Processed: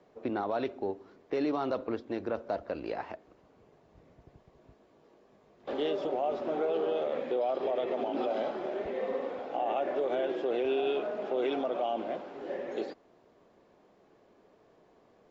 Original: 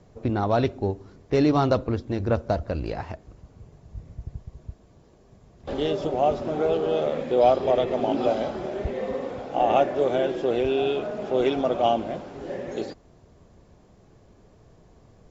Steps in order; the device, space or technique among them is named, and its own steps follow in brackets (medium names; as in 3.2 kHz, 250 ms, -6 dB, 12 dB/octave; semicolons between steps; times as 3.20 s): DJ mixer with the lows and highs turned down (three-band isolator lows -23 dB, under 240 Hz, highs -14 dB, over 4.2 kHz; peak limiter -19.5 dBFS, peak gain reduction 11.5 dB); 4.61–5.72 s: doubling 19 ms -6.5 dB; trim -3 dB